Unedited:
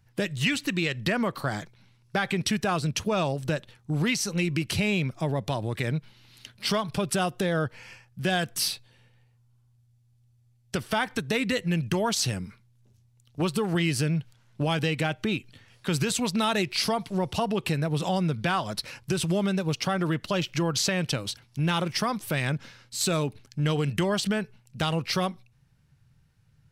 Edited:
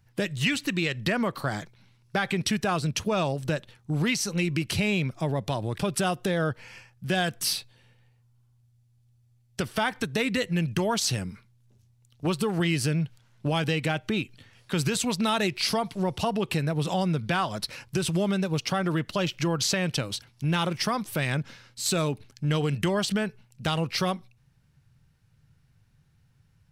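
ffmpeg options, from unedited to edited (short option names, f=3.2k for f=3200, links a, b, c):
-filter_complex "[0:a]asplit=2[a][b];[a]atrim=end=5.782[c];[b]atrim=start=6.928[d];[c][d]acrossfade=d=0.004:c1=hsin:c2=hsin"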